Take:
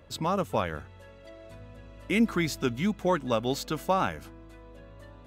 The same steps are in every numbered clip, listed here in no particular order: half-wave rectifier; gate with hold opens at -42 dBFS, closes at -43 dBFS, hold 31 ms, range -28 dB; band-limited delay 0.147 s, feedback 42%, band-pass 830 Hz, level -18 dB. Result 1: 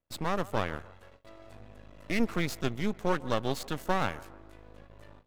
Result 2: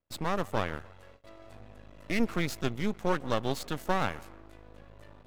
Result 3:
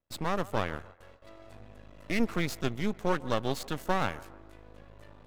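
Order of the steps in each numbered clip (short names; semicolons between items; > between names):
half-wave rectifier > band-limited delay > gate with hold; band-limited delay > gate with hold > half-wave rectifier; gate with hold > half-wave rectifier > band-limited delay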